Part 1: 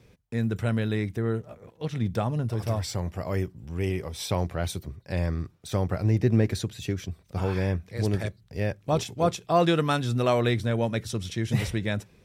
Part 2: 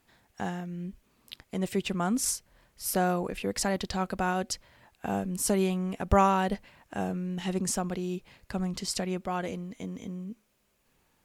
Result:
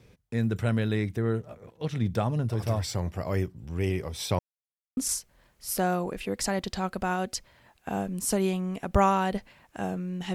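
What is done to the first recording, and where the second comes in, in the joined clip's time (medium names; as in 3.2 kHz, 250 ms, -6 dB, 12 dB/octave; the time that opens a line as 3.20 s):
part 1
4.39–4.97 s: mute
4.97 s: go over to part 2 from 2.14 s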